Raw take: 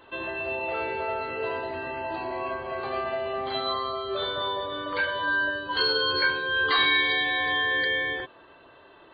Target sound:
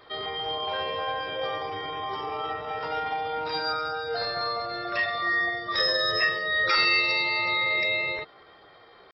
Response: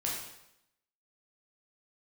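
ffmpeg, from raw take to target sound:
-af "asetrate=52444,aresample=44100,atempo=0.840896"

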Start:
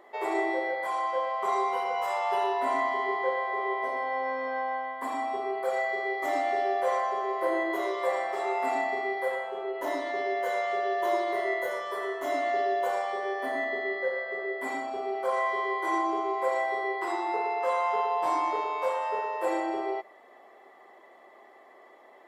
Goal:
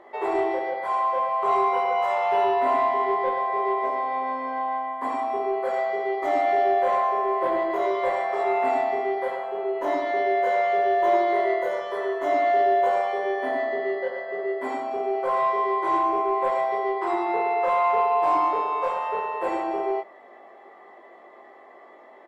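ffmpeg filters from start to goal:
-filter_complex "[0:a]aemphasis=mode=reproduction:type=75kf,asoftclip=type=tanh:threshold=-18.5dB,asplit=2[a][b];[b]adelay=20,volume=-4.5dB[c];[a][c]amix=inputs=2:normalize=0,volume=5dB"

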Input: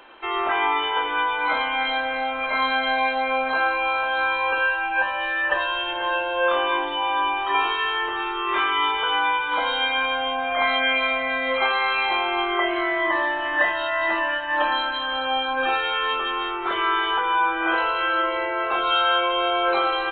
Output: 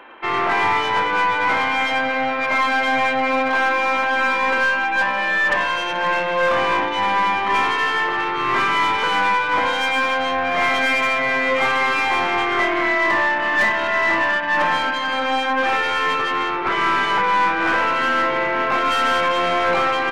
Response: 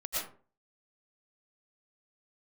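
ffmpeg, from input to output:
-af "aeval=exprs='(tanh(15.8*val(0)+0.75)-tanh(0.75))/15.8':c=same,equalizer=f=125:t=o:w=1:g=6,equalizer=f=250:t=o:w=1:g=9,equalizer=f=500:t=o:w=1:g=6,equalizer=f=1k:t=o:w=1:g=7,equalizer=f=2k:t=o:w=1:g=10"

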